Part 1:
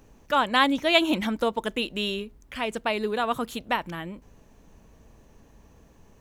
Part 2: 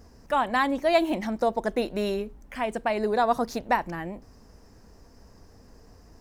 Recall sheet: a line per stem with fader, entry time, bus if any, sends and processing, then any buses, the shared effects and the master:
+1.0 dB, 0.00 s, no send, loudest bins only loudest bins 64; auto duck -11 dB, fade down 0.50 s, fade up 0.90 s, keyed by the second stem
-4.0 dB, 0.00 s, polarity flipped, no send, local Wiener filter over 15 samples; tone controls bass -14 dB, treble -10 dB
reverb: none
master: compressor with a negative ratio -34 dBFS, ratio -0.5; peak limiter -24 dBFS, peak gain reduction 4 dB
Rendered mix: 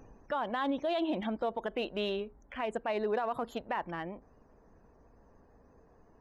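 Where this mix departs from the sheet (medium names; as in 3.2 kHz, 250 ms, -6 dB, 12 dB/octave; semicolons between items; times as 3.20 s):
stem 2: polarity flipped; master: missing compressor with a negative ratio -34 dBFS, ratio -0.5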